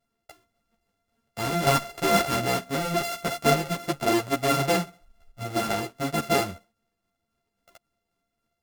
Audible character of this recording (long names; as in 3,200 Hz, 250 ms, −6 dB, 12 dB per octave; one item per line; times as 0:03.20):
a buzz of ramps at a fixed pitch in blocks of 64 samples
tremolo saw down 3.7 Hz, depth 40%
a shimmering, thickened sound